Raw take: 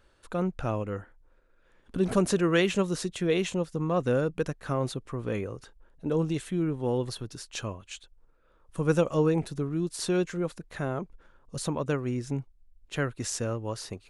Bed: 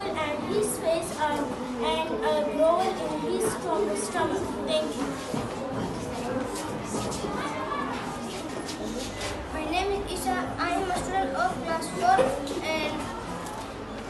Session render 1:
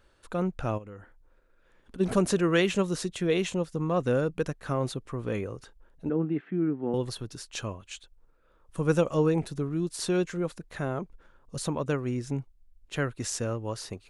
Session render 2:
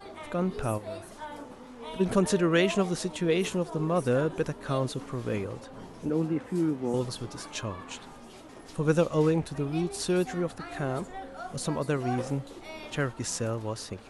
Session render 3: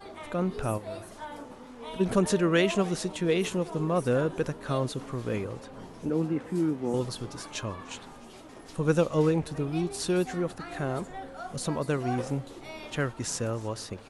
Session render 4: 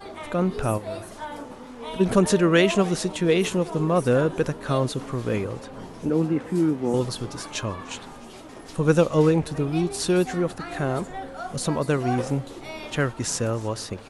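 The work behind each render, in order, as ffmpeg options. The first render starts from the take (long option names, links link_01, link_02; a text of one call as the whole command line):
ffmpeg -i in.wav -filter_complex "[0:a]asplit=3[link_01][link_02][link_03];[link_01]afade=type=out:start_time=0.77:duration=0.02[link_04];[link_02]acompressor=threshold=-40dB:ratio=6:attack=3.2:release=140:knee=1:detection=peak,afade=type=in:start_time=0.77:duration=0.02,afade=type=out:start_time=1.99:duration=0.02[link_05];[link_03]afade=type=in:start_time=1.99:duration=0.02[link_06];[link_04][link_05][link_06]amix=inputs=3:normalize=0,asettb=1/sr,asplit=3[link_07][link_08][link_09];[link_07]atrim=end=6.094[link_10];[link_08]atrim=start=6.09:end=6.94,asetpts=PTS-STARTPTS,afade=type=in:duration=0.004:curve=qsin,afade=type=out:start_time=0.846:duration=0.004:curve=qsin,highpass=frequency=160:width=0.5412,highpass=frequency=160:width=1.3066,equalizer=frequency=290:width_type=q:width=4:gain=5,equalizer=frequency=540:width_type=q:width=4:gain=-8,equalizer=frequency=1000:width_type=q:width=4:gain=-8,lowpass=frequency=2000:width=0.5412,lowpass=frequency=2000:width=1.3066[link_11];[link_09]atrim=start=6.936[link_12];[link_10][link_11]acrossfade=duration=0.004:curve1=hsin:curve2=qsin[link_13];[link_13][link_12]acrossfade=duration=0.004:curve1=qsin:curve2=hsin" out.wav
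ffmpeg -i in.wav -i bed.wav -filter_complex "[1:a]volume=-14dB[link_01];[0:a][link_01]amix=inputs=2:normalize=0" out.wav
ffmpeg -i in.wav -af "aecho=1:1:300:0.0668" out.wav
ffmpeg -i in.wav -af "volume=5.5dB" out.wav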